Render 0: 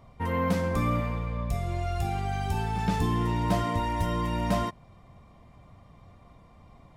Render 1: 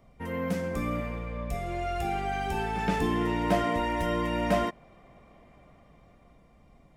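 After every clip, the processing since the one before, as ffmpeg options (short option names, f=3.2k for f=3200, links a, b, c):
-filter_complex "[0:a]equalizer=f=100:t=o:w=0.67:g=-11,equalizer=f=1k:t=o:w=0.67:g=-8,equalizer=f=4k:t=o:w=0.67:g=-5,acrossover=split=290|3600[a][b][c];[b]dynaudnorm=f=220:g=13:m=8.5dB[d];[a][d][c]amix=inputs=3:normalize=0,volume=-2dB"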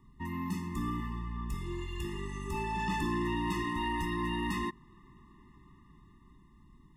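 -filter_complex "[0:a]acrossover=split=2100[a][b];[a]asoftclip=type=tanh:threshold=-27.5dB[c];[c][b]amix=inputs=2:normalize=0,afftfilt=real='re*eq(mod(floor(b*sr/1024/420),2),0)':imag='im*eq(mod(floor(b*sr/1024/420),2),0)':win_size=1024:overlap=0.75"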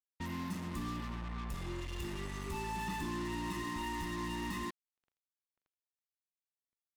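-af "acompressor=threshold=-36dB:ratio=3,acrusher=bits=6:mix=0:aa=0.5,volume=-1dB"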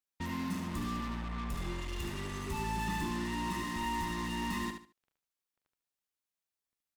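-af "aecho=1:1:73|146|219:0.447|0.112|0.0279,volume=2.5dB"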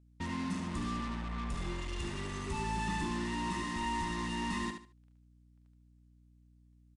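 -af "aeval=exprs='val(0)+0.000891*(sin(2*PI*60*n/s)+sin(2*PI*2*60*n/s)/2+sin(2*PI*3*60*n/s)/3+sin(2*PI*4*60*n/s)/4+sin(2*PI*5*60*n/s)/5)':c=same,aresample=22050,aresample=44100"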